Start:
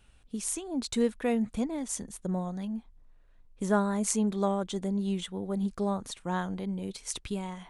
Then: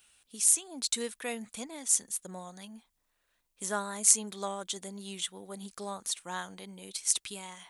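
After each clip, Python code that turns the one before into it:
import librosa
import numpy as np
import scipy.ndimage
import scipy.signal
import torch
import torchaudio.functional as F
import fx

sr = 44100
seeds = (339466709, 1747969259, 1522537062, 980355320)

y = fx.tilt_eq(x, sr, slope=4.5)
y = F.gain(torch.from_numpy(y), -4.0).numpy()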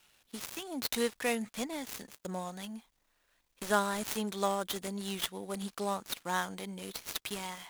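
y = fx.dead_time(x, sr, dead_ms=0.063)
y = F.gain(torch.from_numpy(y), 5.0).numpy()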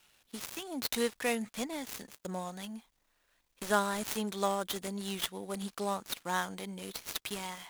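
y = x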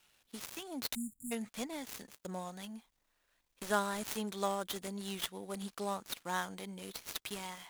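y = fx.spec_erase(x, sr, start_s=0.95, length_s=0.37, low_hz=260.0, high_hz=6900.0)
y = F.gain(torch.from_numpy(y), -3.5).numpy()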